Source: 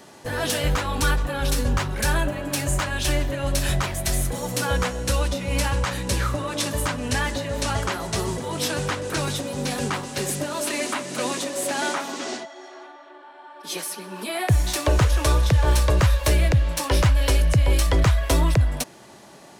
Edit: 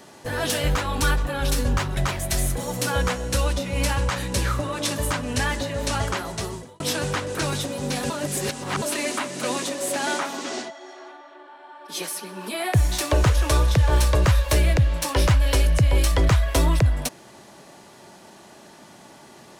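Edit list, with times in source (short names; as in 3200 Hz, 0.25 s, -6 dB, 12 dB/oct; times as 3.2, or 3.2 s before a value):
1.97–3.72 cut
7.68–8.55 fade out equal-power
9.85–10.57 reverse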